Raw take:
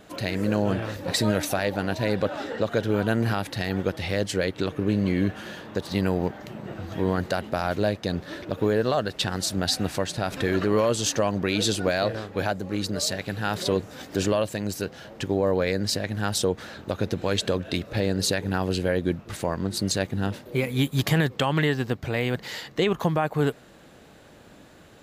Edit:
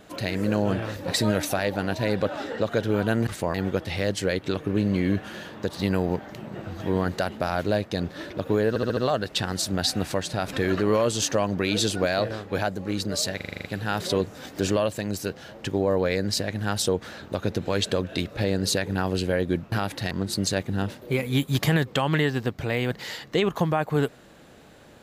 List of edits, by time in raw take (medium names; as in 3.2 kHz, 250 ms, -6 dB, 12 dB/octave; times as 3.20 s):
3.27–3.66 s: swap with 19.28–19.55 s
8.81 s: stutter 0.07 s, 5 plays
13.20 s: stutter 0.04 s, 8 plays